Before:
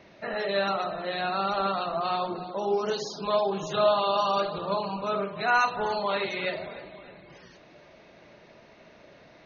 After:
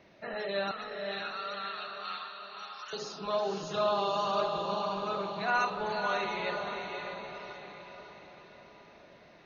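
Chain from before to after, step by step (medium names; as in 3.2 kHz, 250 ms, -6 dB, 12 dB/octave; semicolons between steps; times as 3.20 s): 0.71–2.93 s: high-pass 1.3 kHz 24 dB/octave; echo that smears into a reverb 559 ms, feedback 49%, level -4.5 dB; trim -6 dB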